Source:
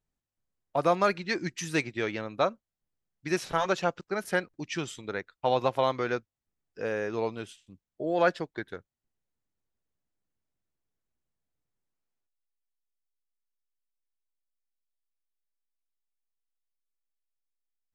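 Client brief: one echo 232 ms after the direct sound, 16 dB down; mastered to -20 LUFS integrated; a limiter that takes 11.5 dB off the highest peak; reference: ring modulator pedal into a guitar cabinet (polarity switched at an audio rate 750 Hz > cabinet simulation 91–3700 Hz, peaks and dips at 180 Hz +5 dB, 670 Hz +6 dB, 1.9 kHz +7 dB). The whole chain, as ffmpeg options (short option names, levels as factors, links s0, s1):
-af "alimiter=limit=0.075:level=0:latency=1,aecho=1:1:232:0.158,aeval=exprs='val(0)*sgn(sin(2*PI*750*n/s))':c=same,highpass=91,equalizer=f=180:t=q:w=4:g=5,equalizer=f=670:t=q:w=4:g=6,equalizer=f=1900:t=q:w=4:g=7,lowpass=f=3700:w=0.5412,lowpass=f=3700:w=1.3066,volume=4.73"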